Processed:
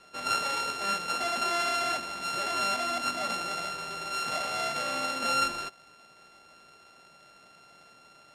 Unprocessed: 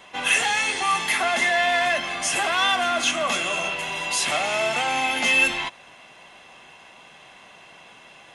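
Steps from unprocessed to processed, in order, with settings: sorted samples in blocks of 32 samples; low-pass 7.7 kHz 12 dB/octave; trim -7.5 dB

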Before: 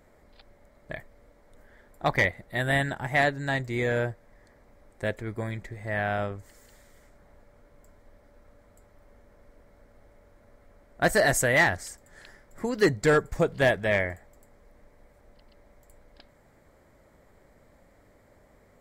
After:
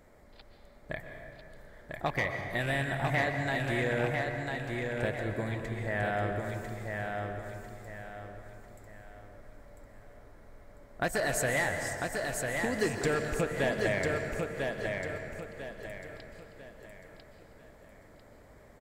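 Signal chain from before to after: rattle on loud lows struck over -30 dBFS, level -25 dBFS; compression 3:1, threshold -30 dBFS, peak gain reduction 10.5 dB; feedback delay 997 ms, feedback 36%, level -4 dB; on a send at -5 dB: reverberation RT60 2.4 s, pre-delay 112 ms

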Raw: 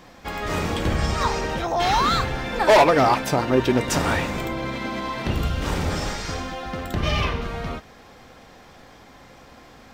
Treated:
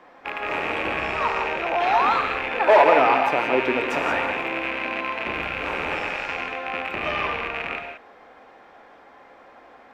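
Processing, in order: rattle on loud lows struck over -34 dBFS, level -11 dBFS; three-band isolator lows -21 dB, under 310 Hz, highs -20 dB, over 2.5 kHz; gated-style reverb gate 200 ms rising, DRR 4.5 dB

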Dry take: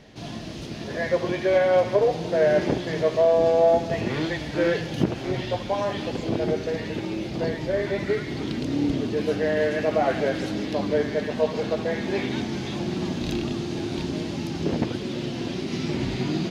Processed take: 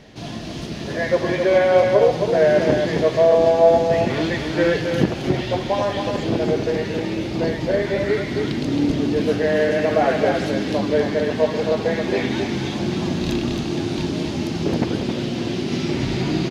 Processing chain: delay 268 ms -5.5 dB; trim +4 dB

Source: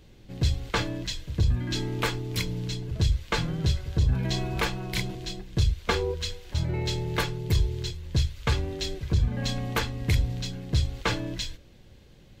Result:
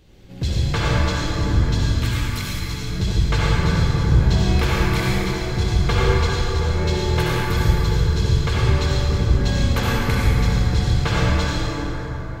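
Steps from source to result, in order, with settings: 1.69–2.71 s: amplifier tone stack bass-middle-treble 10-0-10; reverberation RT60 5.0 s, pre-delay 53 ms, DRR -8 dB

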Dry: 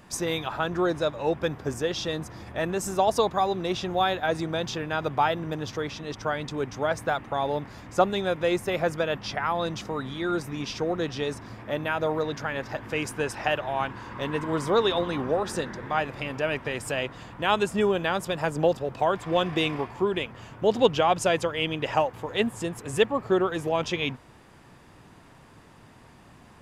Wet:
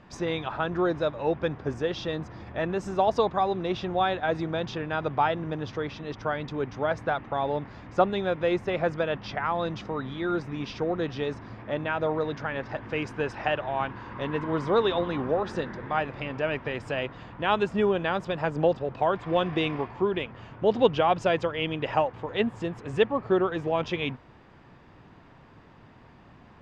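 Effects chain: distance through air 190 m

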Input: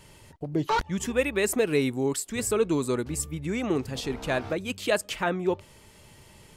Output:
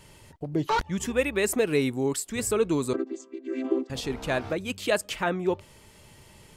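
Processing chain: 2.93–3.90 s: vocoder on a held chord major triad, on C4

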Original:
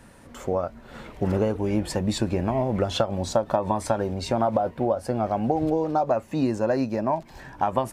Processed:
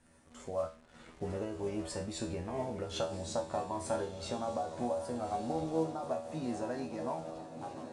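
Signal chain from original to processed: fade out at the end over 0.95 s; treble shelf 7.9 kHz +9.5 dB; feedback comb 81 Hz, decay 0.38 s, harmonics all, mix 90%; modulation noise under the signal 28 dB; in parallel at -4.5 dB: bit crusher 8-bit; on the sum: resampled via 22.05 kHz; on a send: echo that smears into a reverb 1262 ms, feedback 50%, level -10 dB; on the sum: random flutter of the level, depth 55%; trim -4.5 dB

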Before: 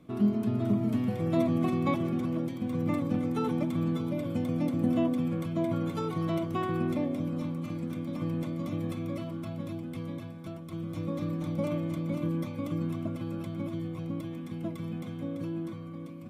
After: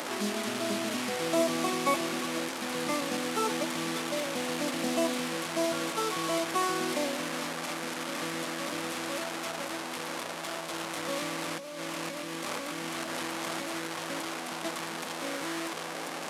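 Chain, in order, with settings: one-bit delta coder 64 kbps, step -31 dBFS; high-pass 500 Hz 12 dB/octave; 11.52–13.76 s: compressor with a negative ratio -42 dBFS, ratio -1; trim +5.5 dB

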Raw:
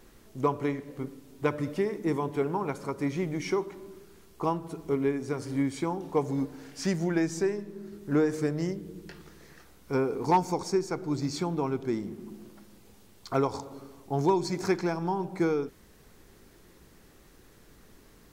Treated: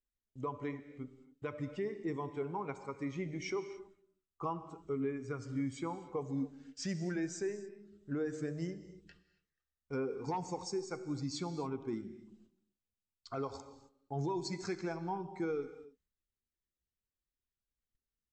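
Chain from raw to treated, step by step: expander on every frequency bin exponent 1.5; bass shelf 65 Hz -8.5 dB; gate -59 dBFS, range -22 dB; Chebyshev low-pass 8.2 kHz, order 8; peak limiter -26.5 dBFS, peak gain reduction 11 dB; 3.78–6.20 s: graphic EQ with 31 bands 125 Hz +6 dB, 1.25 kHz +8 dB, 4 kHz -4 dB; gated-style reverb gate 300 ms flat, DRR 11.5 dB; trim -2.5 dB

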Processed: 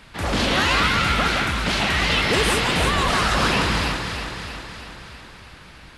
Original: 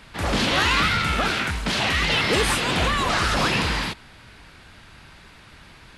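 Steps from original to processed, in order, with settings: echo whose repeats swap between lows and highs 161 ms, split 1.7 kHz, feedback 77%, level -4 dB

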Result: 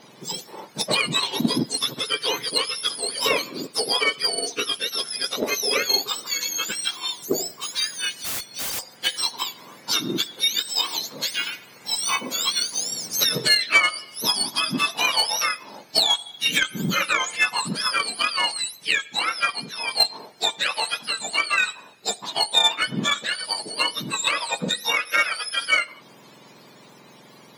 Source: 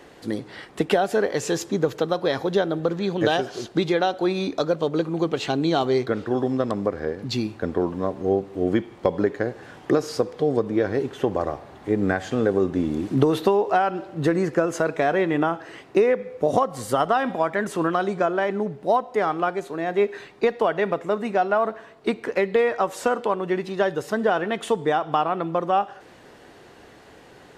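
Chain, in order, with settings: spectrum inverted on a logarithmic axis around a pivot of 1.3 kHz; 8.24–8.79 s: integer overflow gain 25.5 dB; Chebyshev shaper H 3 -17 dB, 7 -42 dB, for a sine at -10.5 dBFS; trim +8 dB

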